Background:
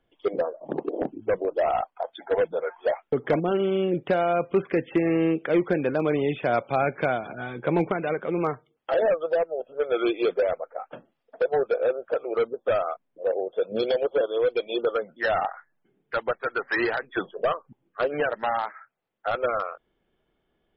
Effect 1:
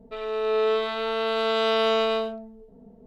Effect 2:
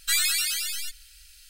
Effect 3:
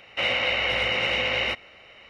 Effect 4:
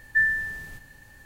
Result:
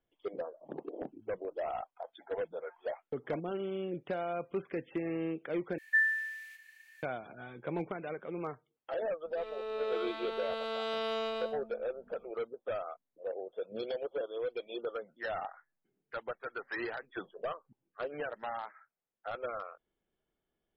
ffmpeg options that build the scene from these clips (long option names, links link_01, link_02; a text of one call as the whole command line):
ffmpeg -i bed.wav -i cue0.wav -i cue1.wav -i cue2.wav -i cue3.wav -filter_complex "[0:a]volume=-13dB[link_01];[4:a]highpass=frequency=2200:width_type=q:width=3.9[link_02];[link_01]asplit=2[link_03][link_04];[link_03]atrim=end=5.784[link_05];[link_02]atrim=end=1.25,asetpts=PTS-STARTPTS,volume=-9.5dB[link_06];[link_04]atrim=start=7.026[link_07];[1:a]atrim=end=3.06,asetpts=PTS-STARTPTS,volume=-12.5dB,afade=type=in:duration=0.004:curve=hsin,afade=type=out:start_time=3.056:duration=0.004:curve=hsin,adelay=9250[link_08];[link_05][link_06]acrossfade=duration=0.004:curve1=hsin:curve2=hsin[link_09];[link_09][link_07]acrossfade=duration=0.004:curve1=hsin:curve2=hsin[link_10];[link_10][link_08]amix=inputs=2:normalize=0" out.wav